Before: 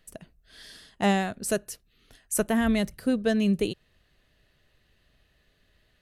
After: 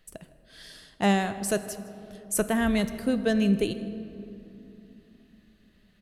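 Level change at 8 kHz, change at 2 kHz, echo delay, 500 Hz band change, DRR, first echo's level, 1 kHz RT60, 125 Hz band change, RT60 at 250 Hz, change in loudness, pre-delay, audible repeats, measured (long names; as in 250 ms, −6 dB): 0.0 dB, +0.5 dB, 159 ms, +0.5 dB, 10.5 dB, −21.5 dB, 2.6 s, +1.0 dB, 4.5 s, −0.5 dB, 3 ms, 1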